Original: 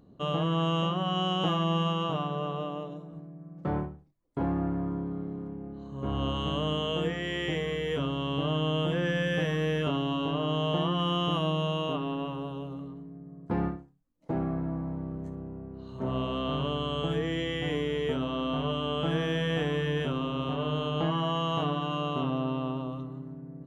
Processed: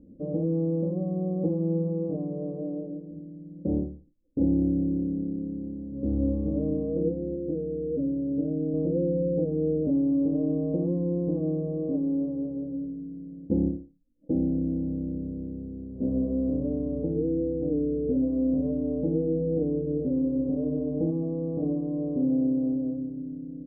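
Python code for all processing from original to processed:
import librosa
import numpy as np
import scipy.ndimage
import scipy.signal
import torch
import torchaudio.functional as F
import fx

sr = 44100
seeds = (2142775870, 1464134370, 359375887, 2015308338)

y = fx.chain(x, sr, fx.low_shelf(hz=71.0, db=-11.0),
    fx.fixed_phaser(hz=2700.0, stages=4), at=(7.35, 8.74))
y = scipy.signal.sosfilt(scipy.signal.butter(6, 510.0, 'lowpass', fs=sr, output='sos'), y)
y = y + 0.7 * np.pad(y, (int(3.7 * sr / 1000.0), 0))[:len(y)]
y = y * librosa.db_to_amplitude(4.0)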